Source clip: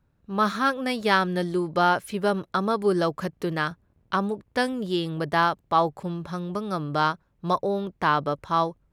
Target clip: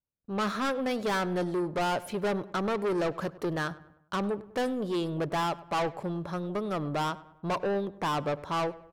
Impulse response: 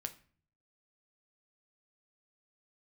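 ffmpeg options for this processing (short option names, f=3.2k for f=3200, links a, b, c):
-filter_complex "[0:a]agate=range=-28dB:threshold=-57dB:ratio=16:detection=peak,equalizer=f=580:t=o:w=2.2:g=7,asoftclip=type=tanh:threshold=-22dB,asplit=2[a][b];[b]adelay=100,lowpass=f=2.3k:p=1,volume=-18dB,asplit=2[c][d];[d]adelay=100,lowpass=f=2.3k:p=1,volume=0.49,asplit=2[e][f];[f]adelay=100,lowpass=f=2.3k:p=1,volume=0.49,asplit=2[g][h];[h]adelay=100,lowpass=f=2.3k:p=1,volume=0.49[i];[a][c][e][g][i]amix=inputs=5:normalize=0,asplit=2[j][k];[1:a]atrim=start_sample=2205[l];[k][l]afir=irnorm=-1:irlink=0,volume=-12.5dB[m];[j][m]amix=inputs=2:normalize=0,volume=-5dB"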